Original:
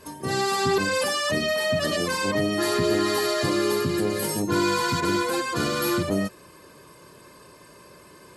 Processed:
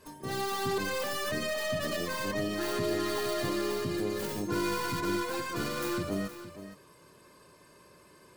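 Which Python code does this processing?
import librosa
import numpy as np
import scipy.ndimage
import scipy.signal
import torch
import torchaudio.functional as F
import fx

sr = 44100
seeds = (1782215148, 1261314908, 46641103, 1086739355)

y = fx.tracing_dist(x, sr, depth_ms=0.16)
y = y + 10.0 ** (-12.5 / 20.0) * np.pad(y, (int(467 * sr / 1000.0), 0))[:len(y)]
y = y * 10.0 ** (-8.5 / 20.0)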